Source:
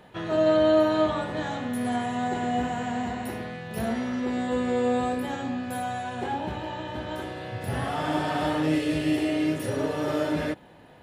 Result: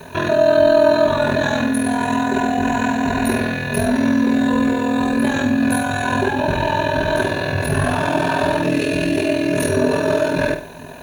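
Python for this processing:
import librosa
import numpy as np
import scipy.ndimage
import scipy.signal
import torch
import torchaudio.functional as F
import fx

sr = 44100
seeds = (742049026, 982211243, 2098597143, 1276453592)

p1 = fx.over_compress(x, sr, threshold_db=-33.0, ratio=-1.0)
p2 = x + F.gain(torch.from_numpy(p1), 1.0).numpy()
p3 = p2 * np.sin(2.0 * np.pi * 21.0 * np.arange(len(p2)) / sr)
p4 = fx.quant_dither(p3, sr, seeds[0], bits=10, dither='triangular')
p5 = fx.ripple_eq(p4, sr, per_octave=1.5, db=12)
p6 = p5 + fx.room_flutter(p5, sr, wall_m=8.9, rt60_s=0.35, dry=0)
y = F.gain(torch.from_numpy(p6), 6.5).numpy()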